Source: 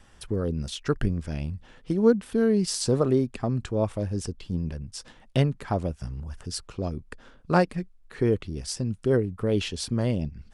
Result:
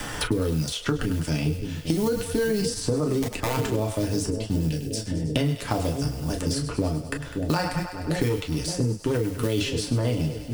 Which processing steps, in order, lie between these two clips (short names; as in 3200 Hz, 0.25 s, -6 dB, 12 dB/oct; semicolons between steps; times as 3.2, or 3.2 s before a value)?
G.711 law mismatch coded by A; 3.22–3.73 wrapped overs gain 20 dB; 8.29–9.15 tube stage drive 19 dB, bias 0.3; high shelf 3900 Hz +7.5 dB; split-band echo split 560 Hz, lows 0.571 s, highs 0.101 s, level -13.5 dB; reverb, pre-delay 3 ms, DRR 1.5 dB; limiter -16.5 dBFS, peak gain reduction 12.5 dB; 4.69–5.37 bell 1100 Hz -12 dB 0.88 oct; three-band squash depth 100%; gain +1 dB